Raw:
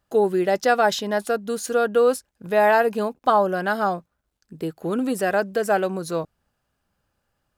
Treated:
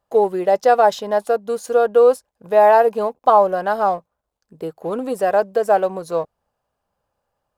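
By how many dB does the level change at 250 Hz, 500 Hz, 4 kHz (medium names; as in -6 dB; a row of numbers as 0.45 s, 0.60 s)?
-3.5 dB, +5.0 dB, no reading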